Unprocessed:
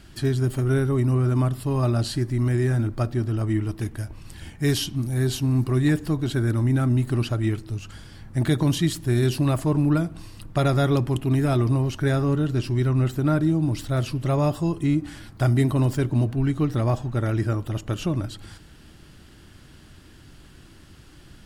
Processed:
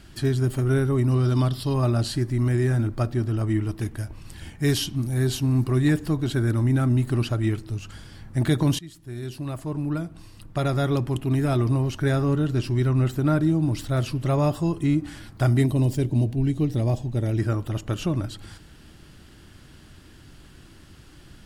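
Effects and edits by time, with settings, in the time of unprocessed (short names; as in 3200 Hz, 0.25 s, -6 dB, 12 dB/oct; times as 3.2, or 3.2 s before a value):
1.11–1.74 band shelf 4100 Hz +12 dB 1 oct
8.79–12.88 fade in equal-power, from -21.5 dB
15.66–17.39 bell 1300 Hz -14.5 dB 1 oct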